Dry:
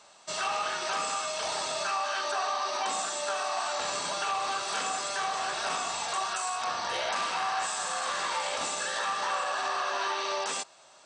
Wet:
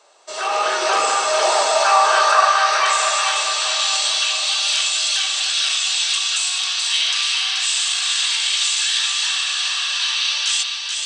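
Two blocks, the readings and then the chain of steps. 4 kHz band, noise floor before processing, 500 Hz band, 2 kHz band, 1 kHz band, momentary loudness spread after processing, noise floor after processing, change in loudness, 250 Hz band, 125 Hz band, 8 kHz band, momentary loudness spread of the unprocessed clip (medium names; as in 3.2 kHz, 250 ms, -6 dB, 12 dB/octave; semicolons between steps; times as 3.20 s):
+18.0 dB, -56 dBFS, +10.5 dB, +12.0 dB, +10.0 dB, 5 LU, -26 dBFS, +13.5 dB, no reading, under -10 dB, +14.0 dB, 1 LU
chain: bass shelf 120 Hz -9.5 dB; level rider gain up to 11.5 dB; high-pass sweep 410 Hz -> 3.2 kHz, 1.23–3.44 s; on a send: two-band feedback delay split 840 Hz, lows 655 ms, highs 431 ms, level -5 dB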